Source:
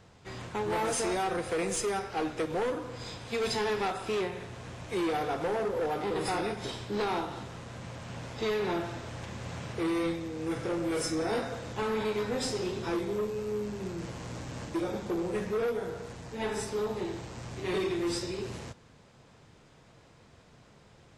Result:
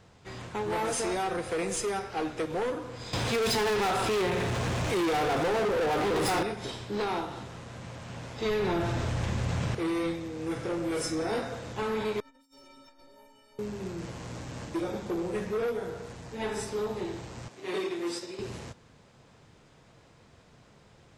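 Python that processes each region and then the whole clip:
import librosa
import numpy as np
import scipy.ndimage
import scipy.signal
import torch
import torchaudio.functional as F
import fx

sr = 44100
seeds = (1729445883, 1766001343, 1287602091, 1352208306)

y = fx.chain(x, sr, fx.leveller(passes=3),
    fx.env_flatten(amount_pct=50), at=(3.13, 6.43))
y = fx.chain(y, sr, fx.low_shelf(hz=110.0, db=11.5),
    fx.env_flatten(amount_pct=70), at=(8.45, 9.75))
y = fx.chain(y, sr, fx.lower_of_two(delay_ms=7.6),
    fx.stiff_resonator(f0_hz=270.0, decay_s=0.58, stiffness=0.03),
    fx.over_compress(threshold_db=-55.0, ratio=-0.5), at=(12.2, 13.59))
y = fx.chain(y, sr, fx.highpass(hz=250.0, slope=12),
    fx.upward_expand(threshold_db=-42.0, expansion=1.5), at=(17.48, 18.39))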